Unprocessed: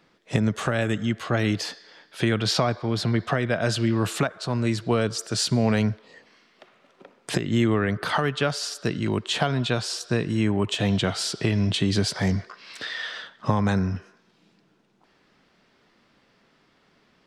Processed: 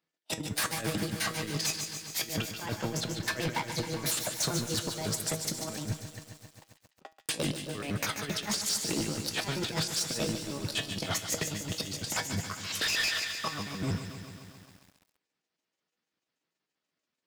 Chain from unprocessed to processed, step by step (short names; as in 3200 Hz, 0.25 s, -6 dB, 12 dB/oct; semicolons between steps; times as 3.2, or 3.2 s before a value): trilling pitch shifter +6 st, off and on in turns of 79 ms; HPF 110 Hz 6 dB/oct; high shelf 4100 Hz +9 dB; gate -45 dBFS, range -28 dB; negative-ratio compressor -29 dBFS, ratio -0.5; transient shaper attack +4 dB, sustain -9 dB; resonator 160 Hz, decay 0.23 s, harmonics all, mix 60%; overloaded stage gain 28.5 dB; thin delay 0.148 s, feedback 54%, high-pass 2100 Hz, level -7.5 dB; lo-fi delay 0.134 s, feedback 80%, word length 9-bit, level -10.5 dB; gain +2.5 dB